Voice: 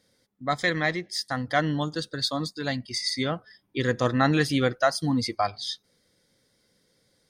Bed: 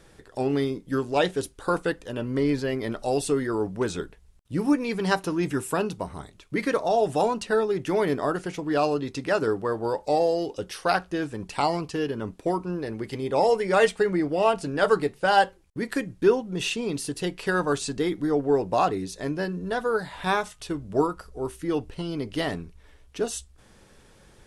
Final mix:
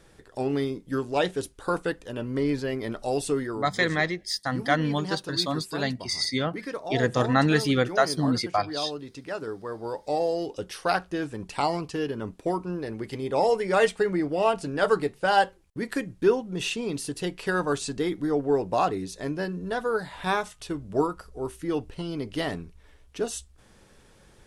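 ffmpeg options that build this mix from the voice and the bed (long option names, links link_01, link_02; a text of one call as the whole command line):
ffmpeg -i stem1.wav -i stem2.wav -filter_complex "[0:a]adelay=3150,volume=0.5dB[link_01];[1:a]volume=6dB,afade=type=out:start_time=3.4:duration=0.23:silence=0.421697,afade=type=in:start_time=9.57:duration=0.98:silence=0.398107[link_02];[link_01][link_02]amix=inputs=2:normalize=0" out.wav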